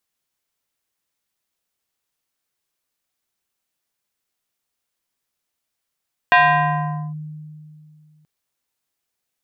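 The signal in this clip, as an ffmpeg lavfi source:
ffmpeg -f lavfi -i "aevalsrc='0.398*pow(10,-3*t/2.57)*sin(2*PI*153*t+2.5*clip(1-t/0.82,0,1)*sin(2*PI*5.67*153*t))':duration=1.93:sample_rate=44100" out.wav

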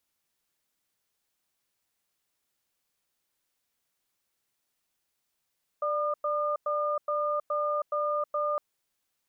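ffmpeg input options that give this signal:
ffmpeg -f lavfi -i "aevalsrc='0.0376*(sin(2*PI*591*t)+sin(2*PI*1210*t))*clip(min(mod(t,0.42),0.32-mod(t,0.42))/0.005,0,1)':duration=2.76:sample_rate=44100" out.wav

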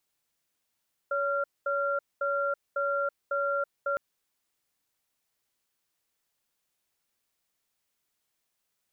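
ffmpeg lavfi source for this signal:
ffmpeg -f lavfi -i "aevalsrc='0.0376*(sin(2*PI*564*t)+sin(2*PI*1380*t))*clip(min(mod(t,0.55),0.33-mod(t,0.55))/0.005,0,1)':duration=2.86:sample_rate=44100" out.wav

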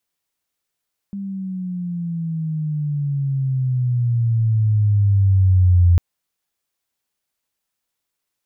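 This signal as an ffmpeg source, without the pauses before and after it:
ffmpeg -f lavfi -i "aevalsrc='pow(10,(-25+16*t/4.85)/20)*sin(2*PI*200*4.85/log(86/200)*(exp(log(86/200)*t/4.85)-1))':duration=4.85:sample_rate=44100" out.wav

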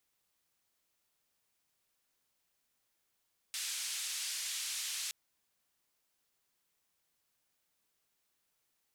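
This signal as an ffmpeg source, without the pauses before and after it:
ffmpeg -f lavfi -i "anoisesrc=color=white:duration=1.57:sample_rate=44100:seed=1,highpass=frequency=2500,lowpass=frequency=8600,volume=-28.6dB" out.wav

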